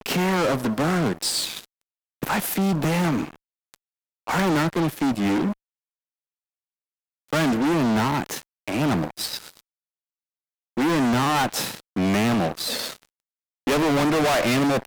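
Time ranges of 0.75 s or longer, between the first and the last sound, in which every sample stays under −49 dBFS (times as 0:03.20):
0:05.53–0:07.29
0:09.61–0:10.77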